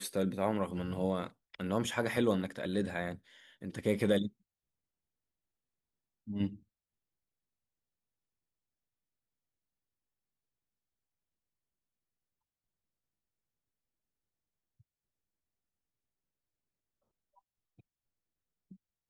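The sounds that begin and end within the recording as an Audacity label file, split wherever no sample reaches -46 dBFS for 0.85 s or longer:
6.280000	6.560000	sound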